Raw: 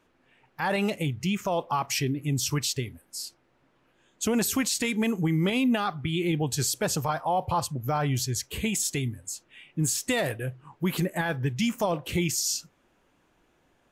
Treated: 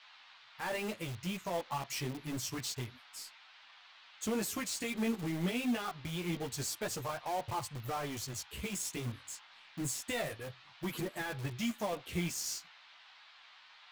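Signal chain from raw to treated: power-law curve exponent 1.4; band noise 780–4100 Hz -54 dBFS; chorus voices 2, 0.27 Hz, delay 13 ms, depth 4.7 ms; in parallel at -6.5 dB: wrapped overs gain 34.5 dB; on the sum: gain -5 dB

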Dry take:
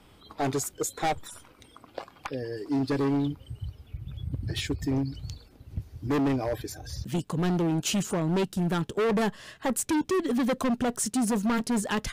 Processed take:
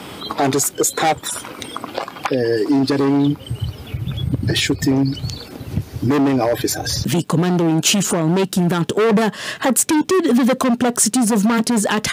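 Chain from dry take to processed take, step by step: HPF 150 Hz 12 dB/oct; compressor 1.5:1, threshold -49 dBFS, peak gain reduction 9.5 dB; maximiser +31.5 dB; gain -7 dB

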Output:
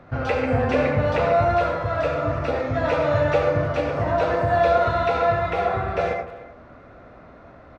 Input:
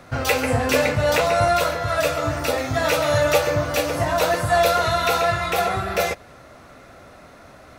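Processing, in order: tape spacing loss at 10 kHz 35 dB; speakerphone echo 0.3 s, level -17 dB; reverb RT60 0.55 s, pre-delay 63 ms, DRR 3 dB

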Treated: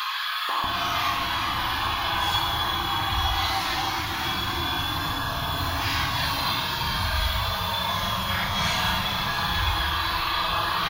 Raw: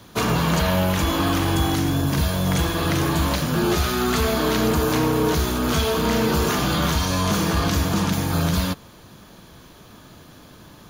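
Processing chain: graphic EQ 125/250/500/1000/2000/4000/8000 Hz -11/-9/-10/+12/+4/+9/-11 dB; compressor, threshold -20 dBFS, peak gain reduction 7 dB; Paulstretch 6.4×, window 0.05 s, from 1.21; vibrato 0.56 Hz 7 cents; three bands offset in time highs, mids, lows 0.49/0.64 s, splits 340/1200 Hz

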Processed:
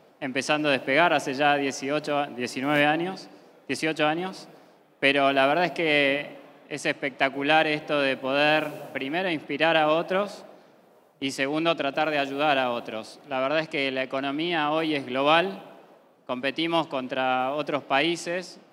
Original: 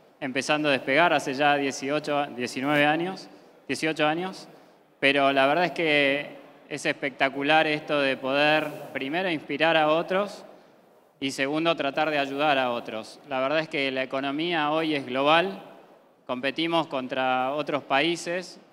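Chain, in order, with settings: HPF 47 Hz

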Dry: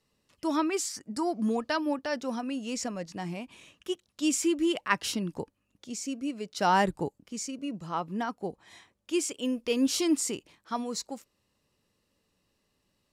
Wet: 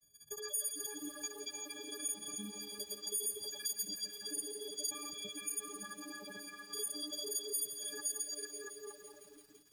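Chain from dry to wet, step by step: frequency quantiser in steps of 6 st; reverb removal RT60 0.93 s; in parallel at +1 dB: level quantiser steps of 13 dB; on the sum: grains, pitch spread up and down by 0 st; on a send: delay with a stepping band-pass 0.308 s, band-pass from 2700 Hz, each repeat -0.7 oct, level -0.5 dB; on the sum: compressor 5:1, threshold -35 dBFS, peak gain reduction 19 dB; passive tone stack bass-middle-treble 6-0-2; speed mistake 33 rpm record played at 45 rpm; thirty-one-band EQ 250 Hz -11 dB, 1000 Hz -4 dB, 2500 Hz -11 dB; lo-fi delay 0.168 s, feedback 80%, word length 12-bit, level -11 dB; gain +13 dB

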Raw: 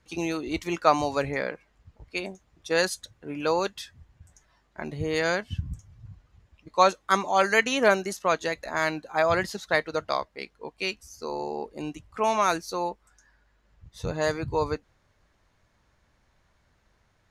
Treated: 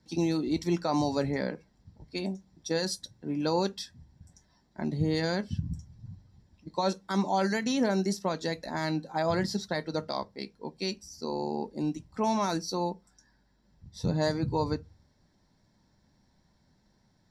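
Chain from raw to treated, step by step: bell 800 Hz -8 dB 2.6 oct; limiter -21.5 dBFS, peak gain reduction 10.5 dB; reverb RT60 0.20 s, pre-delay 3 ms, DRR 12.5 dB; gain -5.5 dB

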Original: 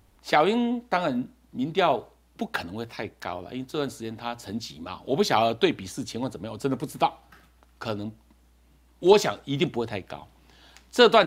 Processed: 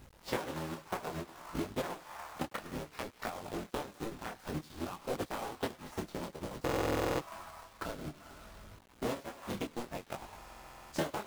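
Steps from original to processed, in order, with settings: cycle switcher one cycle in 3, inverted; on a send at -7 dB: HPF 820 Hz 24 dB/oct + reverb RT60 2.4 s, pre-delay 7 ms; on the sum: compressor 5:1, threshold -36 dBFS, peak gain reduction 22 dB; high shelf 2800 Hz -12 dB; tape echo 0.103 s, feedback 56%, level -14 dB, low-pass 2600 Hz; reverse; upward compressor, threshold -43 dBFS; reverse; transient shaper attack +6 dB, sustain -12 dB; companded quantiser 4-bit; stuck buffer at 6.64/10.36, samples 2048, times 11; detuned doubles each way 20 cents; gain +1.5 dB

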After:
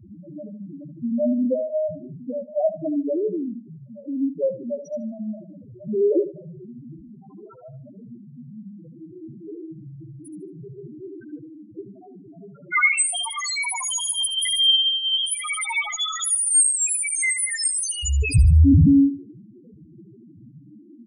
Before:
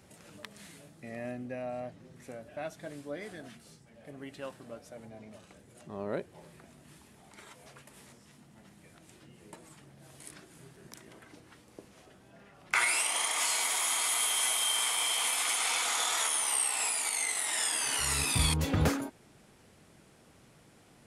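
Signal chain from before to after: bell 340 Hz +5 dB 1.1 oct; loudest bins only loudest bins 1; dynamic EQ 4200 Hz, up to -4 dB, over -59 dBFS, Q 1.7; on a send: feedback echo 75 ms, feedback 25%, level -12.5 dB; on the sum: maximiser +31 dB; cascading phaser falling 1.4 Hz; gain -6.5 dB

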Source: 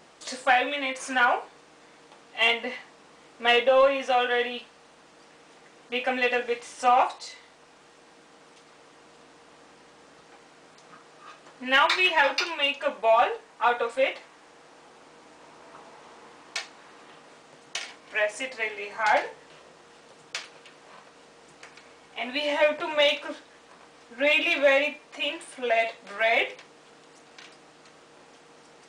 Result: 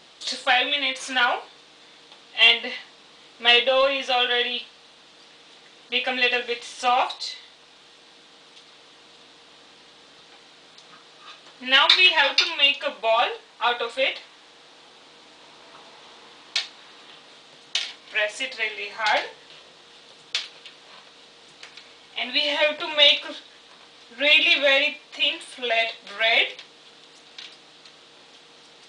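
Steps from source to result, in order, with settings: bell 3700 Hz +15 dB 1 oct; gain -1.5 dB

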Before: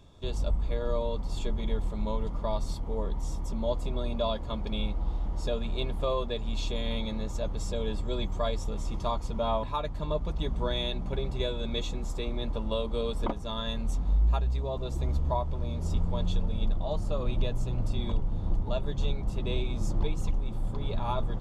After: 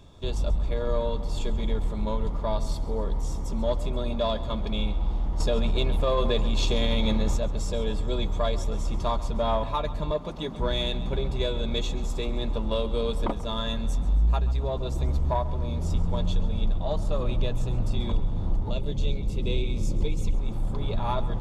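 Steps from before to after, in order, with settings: 10.11–10.59 HPF 180 Hz; 18.71–20.35 spectral gain 600–2000 Hz -9 dB; in parallel at -4 dB: soft clip -26.5 dBFS, distortion -12 dB; on the sum: split-band echo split 410 Hz, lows 0.435 s, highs 0.135 s, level -16 dB; 5.4–7.38 fast leveller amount 100%

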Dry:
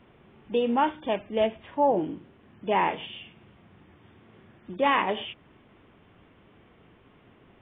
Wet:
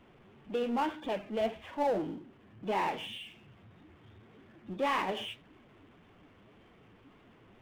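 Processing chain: flange 1.8 Hz, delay 2.2 ms, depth 8.7 ms, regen +47%; spectral noise reduction 8 dB; power-law curve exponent 0.7; gain -6.5 dB

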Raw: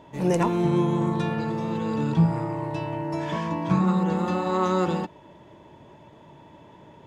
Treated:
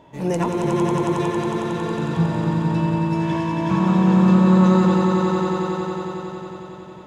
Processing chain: swelling echo 91 ms, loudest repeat 5, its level -6 dB

